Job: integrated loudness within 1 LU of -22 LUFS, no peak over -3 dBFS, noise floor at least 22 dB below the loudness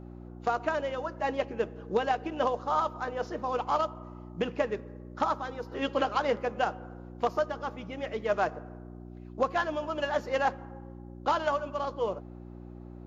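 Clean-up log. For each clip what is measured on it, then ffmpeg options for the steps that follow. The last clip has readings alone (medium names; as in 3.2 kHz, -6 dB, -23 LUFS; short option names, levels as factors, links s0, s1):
hum 60 Hz; highest harmonic 360 Hz; hum level -42 dBFS; loudness -31.5 LUFS; peak level -14.0 dBFS; loudness target -22.0 LUFS
-> -af "bandreject=f=60:t=h:w=4,bandreject=f=120:t=h:w=4,bandreject=f=180:t=h:w=4,bandreject=f=240:t=h:w=4,bandreject=f=300:t=h:w=4,bandreject=f=360:t=h:w=4"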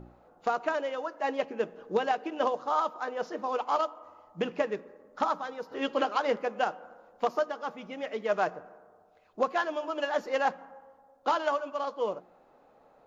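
hum not found; loudness -31.5 LUFS; peak level -14.0 dBFS; loudness target -22.0 LUFS
-> -af "volume=2.99"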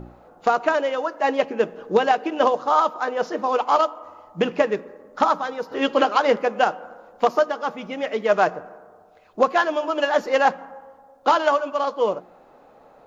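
loudness -22.0 LUFS; peak level -4.5 dBFS; noise floor -52 dBFS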